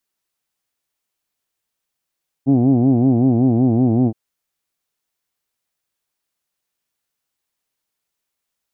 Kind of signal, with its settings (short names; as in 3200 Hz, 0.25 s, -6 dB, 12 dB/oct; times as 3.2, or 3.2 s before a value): formant vowel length 1.67 s, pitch 129 Hz, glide -1.5 st, vibrato depth 1.4 st, F1 280 Hz, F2 740 Hz, F3 2400 Hz